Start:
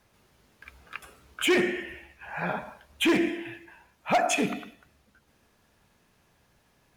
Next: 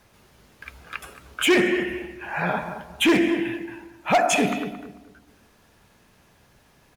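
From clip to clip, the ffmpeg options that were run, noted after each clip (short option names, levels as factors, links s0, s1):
-filter_complex "[0:a]asplit=2[s0][s1];[s1]alimiter=level_in=1.12:limit=0.0631:level=0:latency=1:release=54,volume=0.891,volume=0.891[s2];[s0][s2]amix=inputs=2:normalize=0,asplit=2[s3][s4];[s4]adelay=222,lowpass=f=1100:p=1,volume=0.335,asplit=2[s5][s6];[s6]adelay=222,lowpass=f=1100:p=1,volume=0.32,asplit=2[s7][s8];[s8]adelay=222,lowpass=f=1100:p=1,volume=0.32,asplit=2[s9][s10];[s10]adelay=222,lowpass=f=1100:p=1,volume=0.32[s11];[s3][s5][s7][s9][s11]amix=inputs=5:normalize=0,volume=1.26"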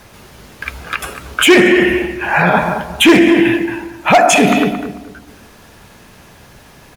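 -af "alimiter=level_in=7.08:limit=0.891:release=50:level=0:latency=1,volume=0.891"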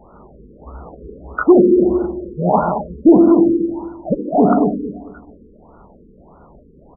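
-af "equalizer=f=110:t=o:w=0.47:g=-15,afftfilt=real='re*lt(b*sr/1024,490*pow(1500/490,0.5+0.5*sin(2*PI*1.6*pts/sr)))':imag='im*lt(b*sr/1024,490*pow(1500/490,0.5+0.5*sin(2*PI*1.6*pts/sr)))':win_size=1024:overlap=0.75"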